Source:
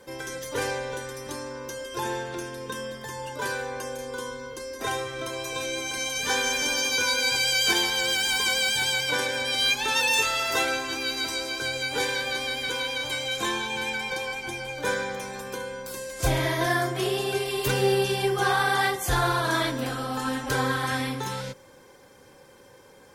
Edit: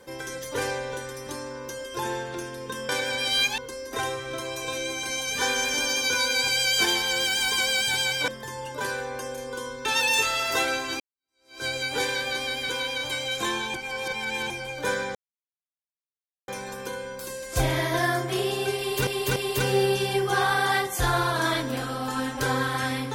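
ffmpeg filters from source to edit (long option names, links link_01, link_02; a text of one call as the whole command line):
ffmpeg -i in.wav -filter_complex "[0:a]asplit=11[link_01][link_02][link_03][link_04][link_05][link_06][link_07][link_08][link_09][link_10][link_11];[link_01]atrim=end=2.892[link_12];[link_02]atrim=start=9.158:end=9.852[link_13];[link_03]atrim=start=4.458:end=9.162[link_14];[link_04]atrim=start=2.888:end=4.462[link_15];[link_05]atrim=start=9.848:end=11,asetpts=PTS-STARTPTS,afade=type=out:start_time=1.148:duration=0.004:curve=hsin[link_16];[link_06]atrim=start=11:end=13.742,asetpts=PTS-STARTPTS,afade=type=in:duration=0.64:curve=exp[link_17];[link_07]atrim=start=13.738:end=14.502,asetpts=PTS-STARTPTS,areverse[link_18];[link_08]atrim=start=14.498:end=15.15,asetpts=PTS-STARTPTS,afade=type=out:start_time=0.648:duration=0.004:curve=hsin,apad=pad_dur=1.33[link_19];[link_09]atrim=start=15.15:end=17.742,asetpts=PTS-STARTPTS,afade=type=in:duration=0.004:curve=hsin[link_20];[link_10]atrim=start=17.448:end=17.742[link_21];[link_11]atrim=start=17.448[link_22];[link_12][link_13]acrossfade=duration=0.004:curve1=hsin:curve2=hsin[link_23];[link_23][link_14]acrossfade=duration=0.004:curve1=hsin:curve2=hsin[link_24];[link_24][link_15]acrossfade=duration=0.004:curve1=hsin:curve2=hsin[link_25];[link_16][link_17]concat=n=2:v=0:a=1[link_26];[link_25][link_26]acrossfade=duration=0.004:curve1=hsin:curve2=hsin[link_27];[link_27][link_18]acrossfade=duration=0.004:curve1=hsin:curve2=hsin[link_28];[link_19][link_20]concat=n=2:v=0:a=1[link_29];[link_28][link_29]acrossfade=duration=0.004:curve1=hsin:curve2=hsin[link_30];[link_30][link_21]acrossfade=duration=0.004:curve1=hsin:curve2=hsin[link_31];[link_31][link_22]acrossfade=duration=0.004:curve1=hsin:curve2=hsin" out.wav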